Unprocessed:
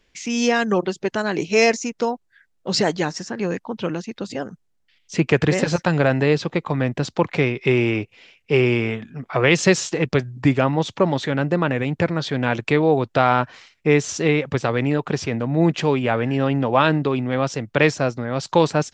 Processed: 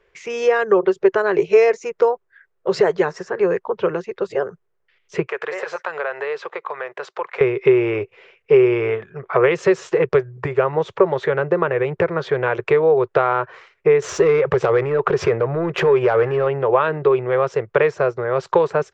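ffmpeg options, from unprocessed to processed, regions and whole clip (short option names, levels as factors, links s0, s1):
-filter_complex "[0:a]asettb=1/sr,asplit=3[s0][s1][s2];[s0]atrim=end=5.274[s3];[s1]atrim=start=5.27:end=7.41,asetpts=PTS-STARTPTS,afade=t=in:d=0.004:c=qsin,afade=t=out:st=2.136:d=0.004:c=qsin,highpass=770,acompressor=threshold=0.0282:ratio=2:attack=3.2:release=140:knee=1:detection=peak[s4];[s2]atrim=start=7.406[s5];[s3][s4]acrossfade=d=0.004:c1=hsin:c2=qsin[s6];[s6][s5]acrossfade=d=0.004:c1=qsin:c2=hsin,asettb=1/sr,asplit=3[s7][s8][s9];[s7]atrim=end=14.024[s10];[s8]atrim=start=14.02:end=16.47,asetpts=PTS-STARTPTS,afade=t=in:d=0.004:c=qsin,afade=t=out:st=2.446:d=0.004:c=qsin,acompressor=threshold=0.0631:ratio=4:attack=3.2:release=140:knee=1:detection=peak,aeval=exprs='0.251*sin(PI/2*2*val(0)/0.251)':c=same[s11];[s9]atrim=start=16.466[s12];[s10][s11]acrossfade=d=0.004:c1=hsin:c2=qsin[s13];[s13][s12]acrossfade=d=0.004:c1=qsin:c2=hsin,highshelf=f=6400:g=-8.5,acompressor=threshold=0.126:ratio=6,firequalizer=gain_entry='entry(170,0);entry(260,-19);entry(380,15);entry(750,5);entry(1100,11);entry(3100,-1);entry(4400,-5);entry(9900,-3)':delay=0.05:min_phase=1,volume=0.75"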